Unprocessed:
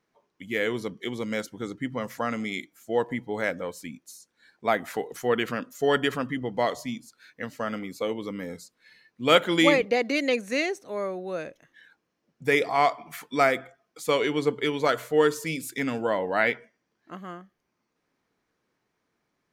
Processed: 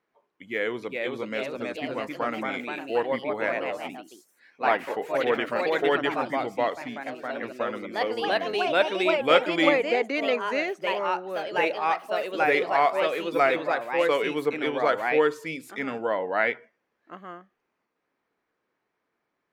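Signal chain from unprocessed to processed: echoes that change speed 0.466 s, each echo +2 st, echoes 3; tone controls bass -10 dB, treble -13 dB

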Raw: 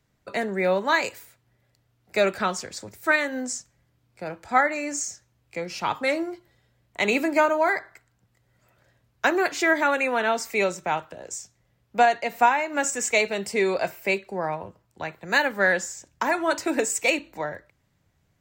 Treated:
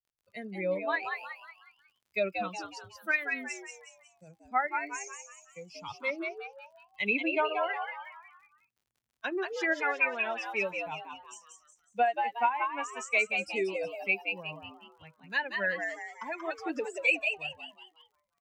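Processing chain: per-bin expansion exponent 2; treble ducked by the level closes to 2700 Hz, closed at -24.5 dBFS; bell 2500 Hz +12.5 dB 0.3 oct; crackle 29/s -51 dBFS; on a send: frequency-shifting echo 0.183 s, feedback 42%, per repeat +110 Hz, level -5 dB; on the sum: gain -6 dB

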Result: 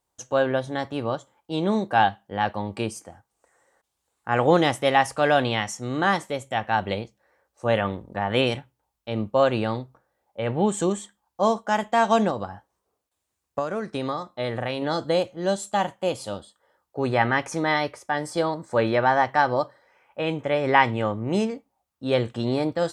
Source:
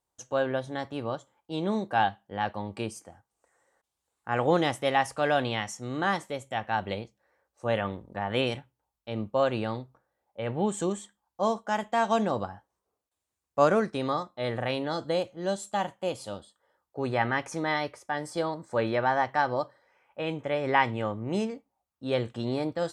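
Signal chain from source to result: 12.29–14.82 compressor 16:1, threshold -29 dBFS, peak gain reduction 14.5 dB; gain +5.5 dB

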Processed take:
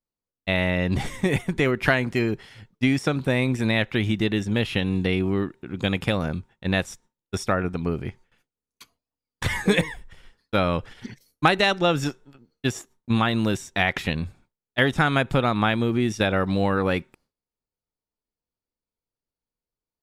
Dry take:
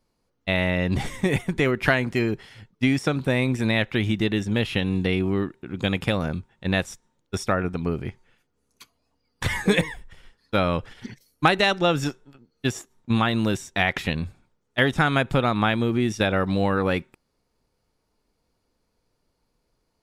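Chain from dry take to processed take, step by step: gate with hold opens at -50 dBFS

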